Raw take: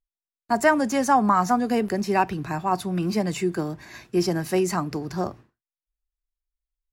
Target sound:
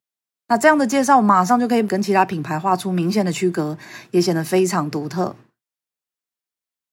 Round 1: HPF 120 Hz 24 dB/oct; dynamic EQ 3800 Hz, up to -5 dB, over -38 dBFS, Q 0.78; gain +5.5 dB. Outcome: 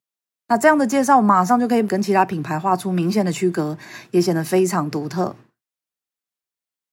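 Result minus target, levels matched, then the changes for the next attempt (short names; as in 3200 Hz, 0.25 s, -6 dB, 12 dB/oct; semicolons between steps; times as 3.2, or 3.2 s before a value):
4000 Hz band -2.5 dB
change: dynamic EQ 14000 Hz, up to -5 dB, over -38 dBFS, Q 0.78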